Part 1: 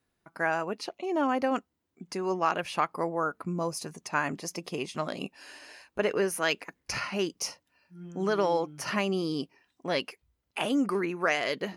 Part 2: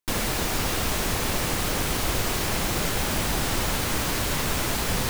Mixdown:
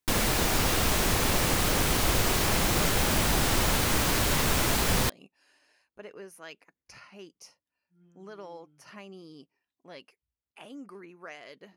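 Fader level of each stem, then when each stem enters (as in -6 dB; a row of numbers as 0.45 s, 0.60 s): -17.5 dB, +0.5 dB; 0.00 s, 0.00 s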